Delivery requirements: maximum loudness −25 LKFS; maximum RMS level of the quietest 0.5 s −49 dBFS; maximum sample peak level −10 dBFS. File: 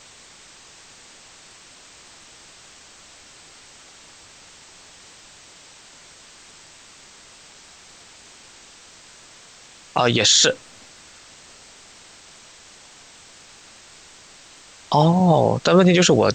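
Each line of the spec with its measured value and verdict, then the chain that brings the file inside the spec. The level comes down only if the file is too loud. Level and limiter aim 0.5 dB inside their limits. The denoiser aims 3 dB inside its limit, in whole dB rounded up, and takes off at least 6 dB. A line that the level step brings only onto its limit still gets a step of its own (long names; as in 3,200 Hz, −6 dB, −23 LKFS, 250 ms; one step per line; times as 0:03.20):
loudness −16.5 LKFS: out of spec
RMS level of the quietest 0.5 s −47 dBFS: out of spec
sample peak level −5.0 dBFS: out of spec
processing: level −9 dB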